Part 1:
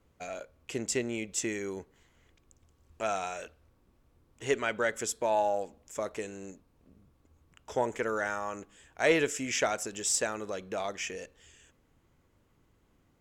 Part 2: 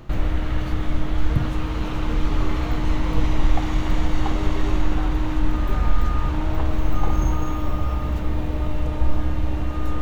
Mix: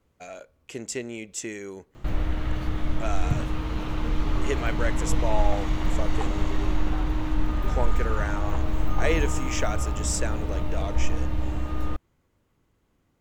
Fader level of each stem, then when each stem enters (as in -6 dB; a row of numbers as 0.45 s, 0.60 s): -1.0 dB, -4.0 dB; 0.00 s, 1.95 s